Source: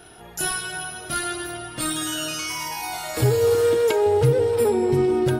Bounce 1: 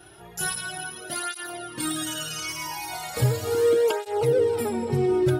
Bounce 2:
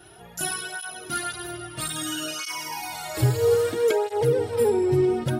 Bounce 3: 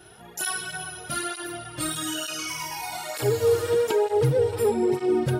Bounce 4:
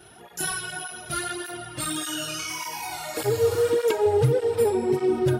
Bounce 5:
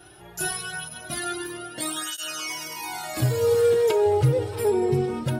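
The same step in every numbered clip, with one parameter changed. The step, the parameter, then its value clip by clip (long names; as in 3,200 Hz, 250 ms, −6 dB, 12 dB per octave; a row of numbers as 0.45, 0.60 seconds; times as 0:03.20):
through-zero flanger with one copy inverted, nulls at: 0.37, 0.61, 1.1, 1.7, 0.23 Hertz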